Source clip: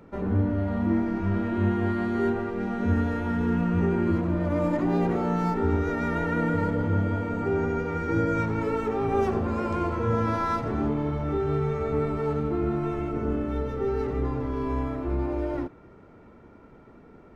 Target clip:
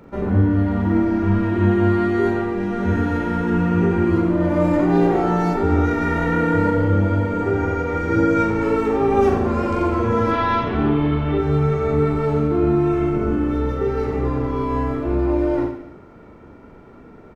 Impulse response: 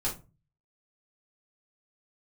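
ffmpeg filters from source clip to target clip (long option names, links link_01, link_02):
-filter_complex "[0:a]asettb=1/sr,asplit=3[link_01][link_02][link_03];[link_01]atrim=end=5.104[link_04];[link_02]atrim=start=5.1:end=5.86,asetpts=PTS-STARTPTS,afade=type=in:duration=0.004:curve=qsin,afade=type=out:start_time=0.756:duration=0.004:curve=qsin,equalizer=frequency=770:width_type=o:width=0.27:gain=7.5[link_05];[link_03]atrim=start=5.856[link_06];[link_04][link_05]acrossfade=duration=0.004:curve1=hsin:curve2=qsin[link_07];[link_07][link_06]acrossfade=duration=0.004:curve1=qsin:curve2=hsin,asettb=1/sr,asplit=3[link_08][link_09][link_10];[link_08]atrim=end=10.314[link_11];[link_09]atrim=start=10.31:end=11.38,asetpts=PTS-STARTPTS,afade=type=in:duration=0.004:curve=qsin,afade=type=out:start_time=1.066:duration=0.004:curve=qsin,lowpass=frequency=3200:width_type=q:width=2.7[link_12];[link_10]atrim=start=11.376[link_13];[link_11][link_12]acrossfade=duration=0.004:curve1=hsin:curve2=qsin[link_14];[link_14][link_13]acrossfade=duration=0.004:curve1=qsin:curve2=hsin,aecho=1:1:40|88|145.6|214.7|297.7:0.631|0.398|0.251|0.158|0.1,volume=5dB"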